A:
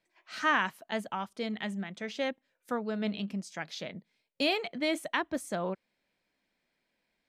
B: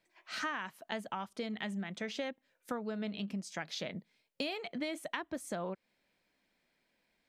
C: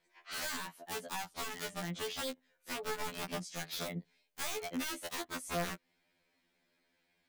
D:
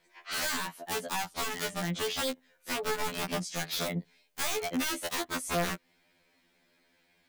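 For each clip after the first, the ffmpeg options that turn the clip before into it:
ffmpeg -i in.wav -af "acompressor=threshold=-37dB:ratio=6,volume=2dB" out.wav
ffmpeg -i in.wav -af "aeval=exprs='(mod(42.2*val(0)+1,2)-1)/42.2':channel_layout=same,afftfilt=real='re*2*eq(mod(b,4),0)':imag='im*2*eq(mod(b,4),0)':win_size=2048:overlap=0.75,volume=3dB" out.wav
ffmpeg -i in.wav -af "asoftclip=type=tanh:threshold=-30.5dB,volume=8dB" out.wav

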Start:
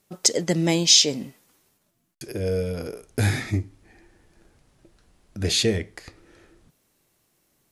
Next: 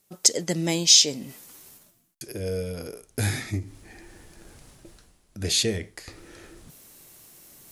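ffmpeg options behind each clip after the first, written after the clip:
ffmpeg -i in.wav -af "highshelf=frequency=5100:gain=9,areverse,acompressor=mode=upward:threshold=-31dB:ratio=2.5,areverse,volume=-4.5dB" out.wav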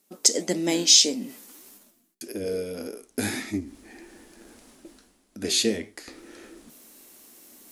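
ffmpeg -i in.wav -af "flanger=delay=9.6:depth=9.8:regen=76:speed=1.7:shape=sinusoidal,lowshelf=frequency=180:width_type=q:width=3:gain=-9.5,volume=4dB" out.wav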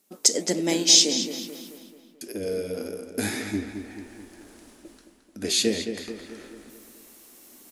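ffmpeg -i in.wav -filter_complex "[0:a]asplit=2[link_01][link_02];[link_02]adelay=218,lowpass=frequency=3900:poles=1,volume=-8dB,asplit=2[link_03][link_04];[link_04]adelay=218,lowpass=frequency=3900:poles=1,volume=0.53,asplit=2[link_05][link_06];[link_06]adelay=218,lowpass=frequency=3900:poles=1,volume=0.53,asplit=2[link_07][link_08];[link_08]adelay=218,lowpass=frequency=3900:poles=1,volume=0.53,asplit=2[link_09][link_10];[link_10]adelay=218,lowpass=frequency=3900:poles=1,volume=0.53,asplit=2[link_11][link_12];[link_12]adelay=218,lowpass=frequency=3900:poles=1,volume=0.53[link_13];[link_01][link_03][link_05][link_07][link_09][link_11][link_13]amix=inputs=7:normalize=0" out.wav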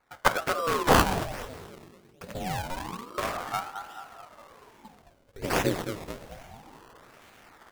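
ffmpeg -i in.wav -af "acrusher=samples=20:mix=1:aa=0.000001:lfo=1:lforange=20:lforate=1.2,aeval=exprs='val(0)*sin(2*PI*590*n/s+590*0.85/0.26*sin(2*PI*0.26*n/s))':channel_layout=same" out.wav

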